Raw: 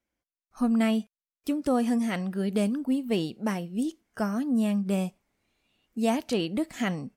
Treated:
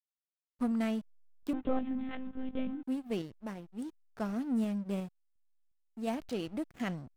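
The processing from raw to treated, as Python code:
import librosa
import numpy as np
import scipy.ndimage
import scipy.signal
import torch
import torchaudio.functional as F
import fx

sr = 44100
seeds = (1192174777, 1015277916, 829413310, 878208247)

y = fx.backlash(x, sr, play_db=-31.0)
y = fx.tremolo_random(y, sr, seeds[0], hz=2.8, depth_pct=55)
y = fx.lpc_monotone(y, sr, seeds[1], pitch_hz=260.0, order=16, at=(1.53, 2.83))
y = y * 10.0 ** (-5.0 / 20.0)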